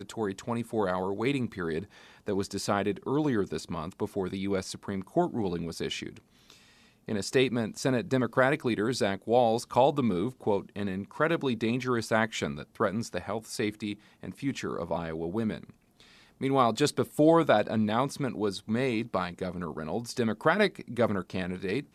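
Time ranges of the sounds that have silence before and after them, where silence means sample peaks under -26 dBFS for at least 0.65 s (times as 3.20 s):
7.09–15.56 s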